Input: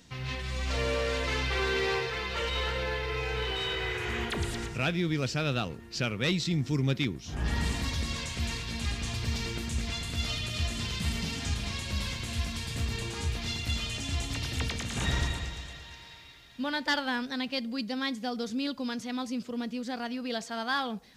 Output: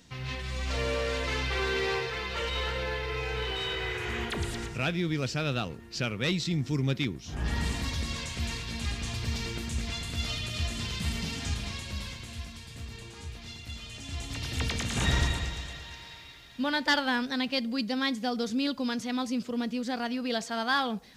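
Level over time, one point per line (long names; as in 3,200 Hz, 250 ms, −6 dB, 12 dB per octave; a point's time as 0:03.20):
0:11.54 −0.5 dB
0:12.63 −9.5 dB
0:13.81 −9.5 dB
0:14.78 +3 dB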